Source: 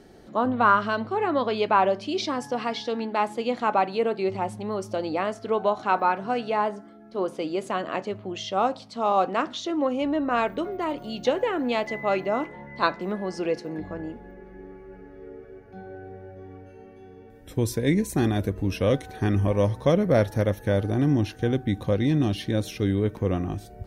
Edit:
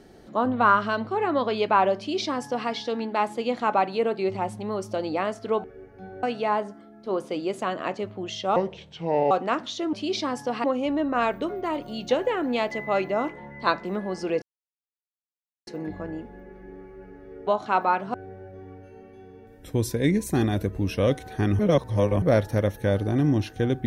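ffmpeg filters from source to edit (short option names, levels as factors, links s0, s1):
-filter_complex "[0:a]asplit=12[s0][s1][s2][s3][s4][s5][s6][s7][s8][s9][s10][s11];[s0]atrim=end=5.642[s12];[s1]atrim=start=15.378:end=15.972[s13];[s2]atrim=start=6.308:end=8.644[s14];[s3]atrim=start=8.64:end=9.18,asetpts=PTS-STARTPTS,asetrate=31752,aresample=44100[s15];[s4]atrim=start=9.176:end=9.802[s16];[s5]atrim=start=1.978:end=2.692[s17];[s6]atrim=start=9.798:end=13.58,asetpts=PTS-STARTPTS,afade=t=out:st=3.778:d=0.004:c=hsin,apad=pad_dur=1.25[s18];[s7]atrim=start=13.58:end=15.382,asetpts=PTS-STARTPTS,afade=t=in:d=0.004:c=hsin[s19];[s8]atrim=start=5.638:end=6.312[s20];[s9]atrim=start=15.968:end=19.422[s21];[s10]atrim=start=19.418:end=20.052,asetpts=PTS-STARTPTS,areverse[s22];[s11]atrim=start=20.048[s23];[s12][s13]acrossfade=d=0.004:c1=hsin:c2=hsin[s24];[s24][s14]acrossfade=d=0.004:c1=hsin:c2=hsin[s25];[s25][s15]acrossfade=d=0.004:c1=hsin:c2=hsin[s26];[s26][s16]acrossfade=d=0.004:c1=hsin:c2=hsin[s27];[s27][s17]acrossfade=d=0.004:c1=hsin:c2=hsin[s28];[s18][s19]concat=n=2:v=0:a=1[s29];[s28][s29]acrossfade=d=0.004:c1=hsin:c2=hsin[s30];[s30][s20]acrossfade=d=0.004:c1=hsin:c2=hsin[s31];[s31][s21]acrossfade=d=0.004:c1=hsin:c2=hsin[s32];[s32][s22]acrossfade=d=0.004:c1=hsin:c2=hsin[s33];[s33][s23]acrossfade=d=0.004:c1=hsin:c2=hsin"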